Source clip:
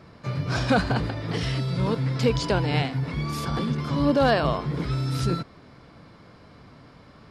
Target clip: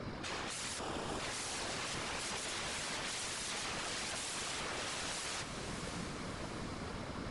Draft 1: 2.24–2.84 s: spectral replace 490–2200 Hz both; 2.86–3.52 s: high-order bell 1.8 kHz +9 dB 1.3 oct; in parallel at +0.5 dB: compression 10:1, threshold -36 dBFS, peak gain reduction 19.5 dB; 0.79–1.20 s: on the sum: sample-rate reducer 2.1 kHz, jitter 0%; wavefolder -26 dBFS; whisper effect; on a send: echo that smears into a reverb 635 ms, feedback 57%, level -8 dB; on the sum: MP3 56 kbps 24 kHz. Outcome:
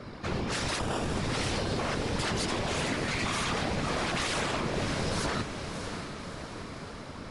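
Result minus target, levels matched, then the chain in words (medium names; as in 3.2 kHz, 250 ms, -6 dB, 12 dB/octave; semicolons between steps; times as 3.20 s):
wavefolder: distortion -23 dB
2.24–2.84 s: spectral replace 490–2200 Hz both; 2.86–3.52 s: high-order bell 1.8 kHz +9 dB 1.3 oct; in parallel at +0.5 dB: compression 10:1, threshold -36 dBFS, peak gain reduction 19.5 dB; 0.79–1.20 s: on the sum: sample-rate reducer 2.1 kHz, jitter 0%; wavefolder -36 dBFS; whisper effect; on a send: echo that smears into a reverb 635 ms, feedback 57%, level -8 dB; on the sum: MP3 56 kbps 24 kHz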